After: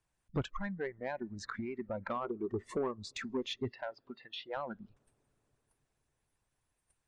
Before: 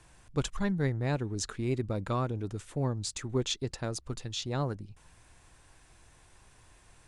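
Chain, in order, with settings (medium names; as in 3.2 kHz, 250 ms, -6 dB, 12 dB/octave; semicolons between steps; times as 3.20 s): compression 2.5:1, threshold -45 dBFS, peak gain reduction 14 dB; gate -53 dBFS, range -14 dB; low-pass that closes with the level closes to 2.4 kHz, closed at -41 dBFS; 2.24–3.10 s: small resonant body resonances 400/1100 Hz, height 13 dB, ringing for 55 ms; 3.70–4.57 s: band-pass 280–3400 Hz; reverberation RT60 4.7 s, pre-delay 90 ms, DRR 19 dB; harmonic-percussive split percussive +9 dB; spectral noise reduction 19 dB; saturation -29.5 dBFS, distortion -15 dB; trim +3.5 dB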